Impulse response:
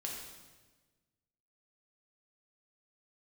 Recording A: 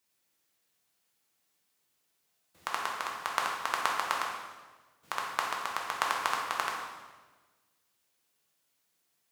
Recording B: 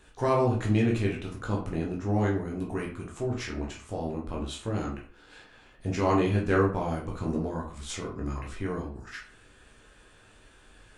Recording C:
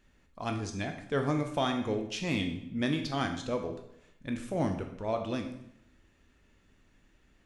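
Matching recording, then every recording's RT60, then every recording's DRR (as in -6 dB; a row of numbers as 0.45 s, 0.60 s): A; 1.3 s, 0.45 s, 0.75 s; -2.0 dB, -2.5 dB, 4.5 dB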